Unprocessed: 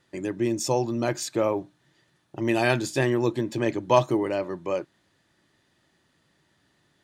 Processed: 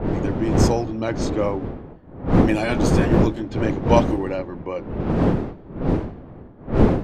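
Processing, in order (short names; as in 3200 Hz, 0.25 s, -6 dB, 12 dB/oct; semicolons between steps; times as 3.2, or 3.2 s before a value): delay-line pitch shifter -1 st; wind noise 320 Hz -23 dBFS; low-pass opened by the level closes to 1600 Hz, open at -16 dBFS; gain +1.5 dB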